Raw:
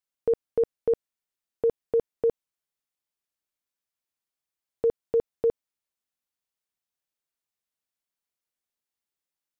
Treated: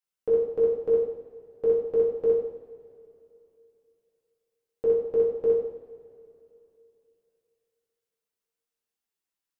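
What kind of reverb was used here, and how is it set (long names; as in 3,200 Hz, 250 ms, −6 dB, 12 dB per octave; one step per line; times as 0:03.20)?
coupled-rooms reverb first 0.7 s, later 3.1 s, from −18 dB, DRR −6.5 dB
level −7 dB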